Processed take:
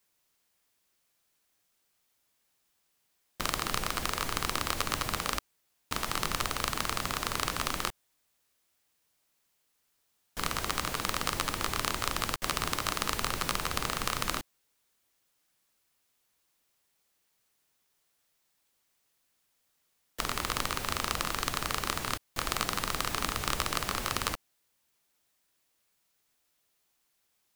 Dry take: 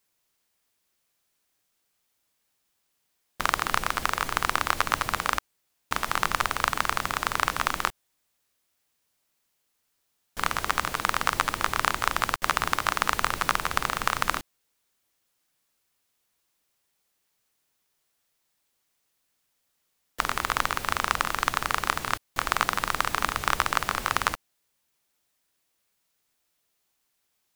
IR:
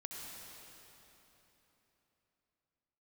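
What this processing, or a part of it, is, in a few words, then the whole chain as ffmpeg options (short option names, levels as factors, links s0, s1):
one-band saturation: -filter_complex "[0:a]acrossover=split=570|2800[s0][s1][s2];[s1]asoftclip=type=tanh:threshold=0.0531[s3];[s0][s3][s2]amix=inputs=3:normalize=0"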